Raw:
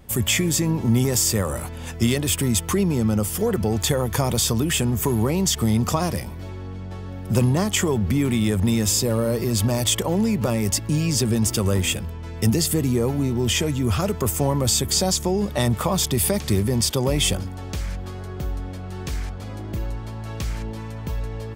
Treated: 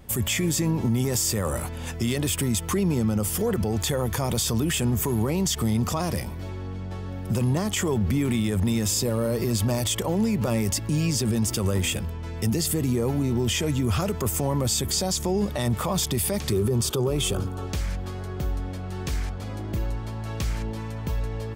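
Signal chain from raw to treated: 16.52–17.67 thirty-one-band EQ 125 Hz +6 dB, 400 Hz +11 dB, 1250 Hz +9 dB, 2000 Hz -9 dB, 5000 Hz -5 dB; limiter -16 dBFS, peak gain reduction 11.5 dB

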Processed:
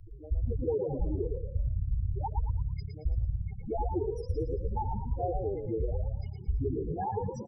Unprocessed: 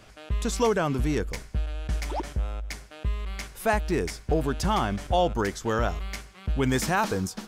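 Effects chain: cycle switcher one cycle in 3, muted; bell 1400 Hz -6 dB 1.1 oct; notches 60/120/180/240/300 Hz; comb 2.4 ms, depth 36%; dynamic EQ 2200 Hz, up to -5 dB, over -52 dBFS, Q 2.3; compressor 1.5:1, threshold -34 dBFS, peak gain reduction 5.5 dB; dispersion highs, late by 86 ms, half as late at 340 Hz; loudest bins only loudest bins 4; on a send: frequency-shifting echo 0.111 s, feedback 32%, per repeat +34 Hz, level -6 dB; on the sum: three-band squash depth 40%; gain +2.5 dB

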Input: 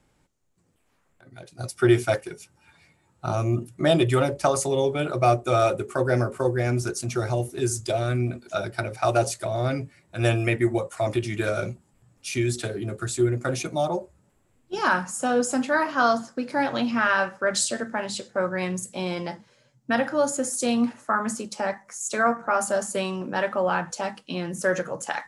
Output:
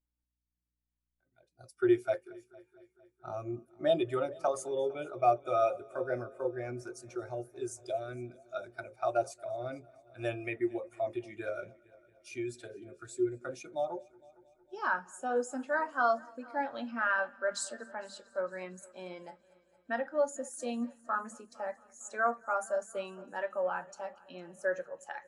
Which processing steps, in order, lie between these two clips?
hum 60 Hz, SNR 31 dB; bell 120 Hz -10.5 dB 2.4 oct; on a send: multi-head echo 0.228 s, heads first and second, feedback 64%, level -19.5 dB; on the sum: spectral expander 1.5:1; gain -5 dB

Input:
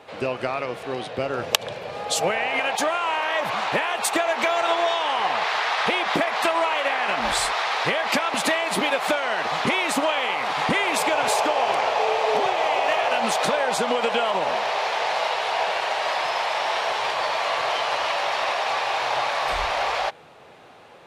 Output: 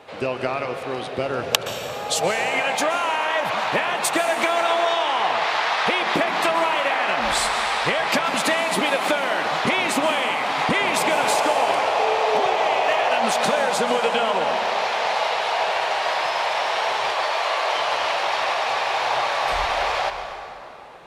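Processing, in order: 17.13–17.73 steep high-pass 300 Hz; plate-style reverb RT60 2.9 s, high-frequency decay 0.65×, pre-delay 0.11 s, DRR 7.5 dB; gain +1 dB

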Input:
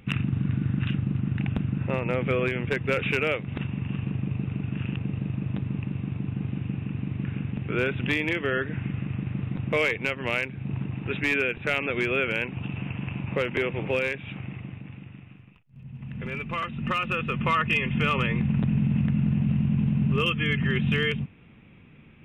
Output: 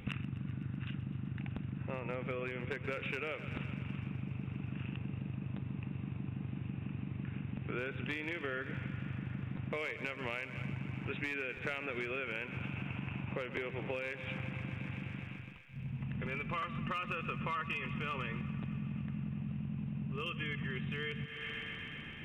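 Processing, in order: on a send: thinning echo 0.127 s, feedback 83%, high-pass 350 Hz, level -16.5 dB; on the sum: compressor 16:1, threshold -38 dBFS, peak gain reduction 19 dB; dynamic EQ 1200 Hz, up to +3 dB, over -57 dBFS, Q 0.74; gain +2 dB

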